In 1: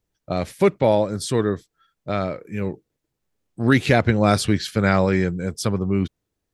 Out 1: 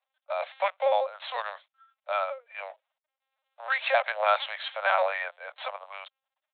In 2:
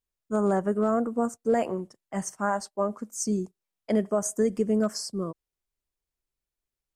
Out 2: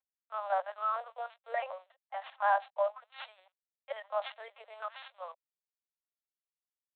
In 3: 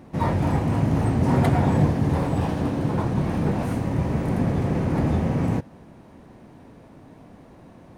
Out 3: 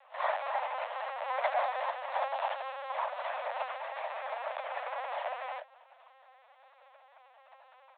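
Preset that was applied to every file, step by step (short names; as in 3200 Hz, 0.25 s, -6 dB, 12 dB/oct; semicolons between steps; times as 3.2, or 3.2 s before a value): CVSD 64 kbps; comb 3.8 ms, depth 97%; LPC vocoder at 8 kHz pitch kept; steep high-pass 580 Hz 72 dB/oct; gain -2.5 dB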